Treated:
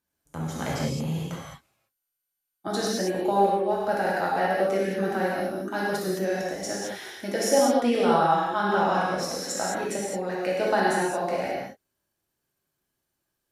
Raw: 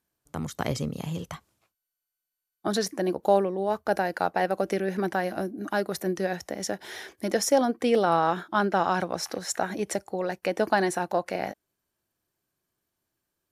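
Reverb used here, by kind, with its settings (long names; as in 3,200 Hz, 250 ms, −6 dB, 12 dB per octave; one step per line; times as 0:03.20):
reverb whose tail is shaped and stops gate 240 ms flat, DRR −5.5 dB
level −5 dB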